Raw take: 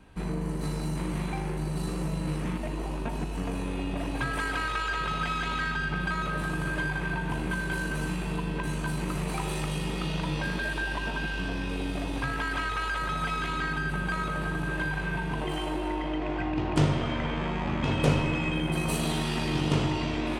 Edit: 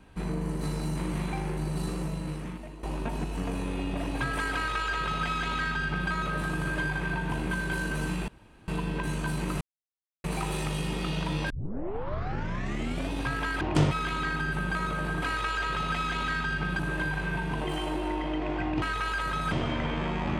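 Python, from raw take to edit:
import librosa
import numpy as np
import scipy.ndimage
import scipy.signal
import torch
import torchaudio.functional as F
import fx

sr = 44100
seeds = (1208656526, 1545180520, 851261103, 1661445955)

y = fx.edit(x, sr, fx.fade_out_to(start_s=1.84, length_s=0.99, floor_db=-13.5),
    fx.duplicate(start_s=4.53, length_s=1.57, to_s=14.59),
    fx.insert_room_tone(at_s=8.28, length_s=0.4),
    fx.insert_silence(at_s=9.21, length_s=0.63),
    fx.tape_start(start_s=10.47, length_s=1.61),
    fx.swap(start_s=12.58, length_s=0.7, other_s=16.62, other_length_s=0.3), tone=tone)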